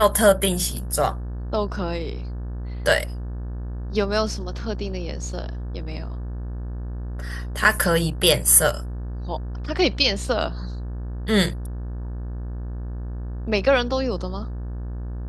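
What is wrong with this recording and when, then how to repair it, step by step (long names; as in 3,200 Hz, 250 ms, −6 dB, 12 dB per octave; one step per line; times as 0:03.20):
mains buzz 60 Hz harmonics 30 −30 dBFS
0:08.22: drop-out 2.1 ms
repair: hum removal 60 Hz, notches 30
repair the gap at 0:08.22, 2.1 ms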